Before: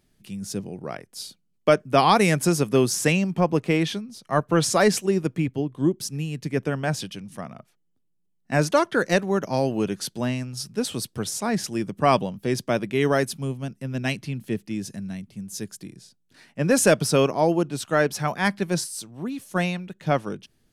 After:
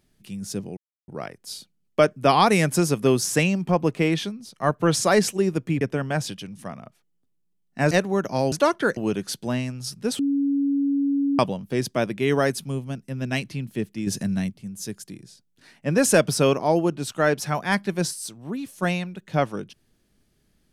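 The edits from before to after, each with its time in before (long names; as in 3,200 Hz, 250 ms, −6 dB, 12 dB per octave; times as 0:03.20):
0:00.77: splice in silence 0.31 s
0:05.50–0:06.54: remove
0:08.64–0:09.09: move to 0:09.70
0:10.92–0:12.12: beep over 280 Hz −19 dBFS
0:14.80–0:15.23: clip gain +8 dB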